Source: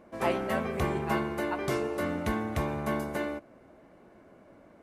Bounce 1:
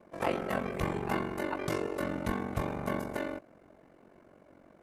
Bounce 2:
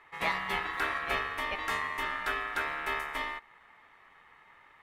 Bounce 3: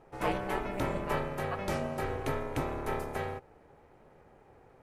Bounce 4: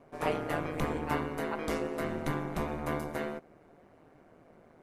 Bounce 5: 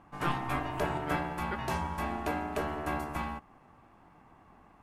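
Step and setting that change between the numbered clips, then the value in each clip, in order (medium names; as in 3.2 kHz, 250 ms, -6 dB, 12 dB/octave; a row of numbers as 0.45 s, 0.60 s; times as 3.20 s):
ring modulator, frequency: 23 Hz, 1.5 kHz, 200 Hz, 78 Hz, 520 Hz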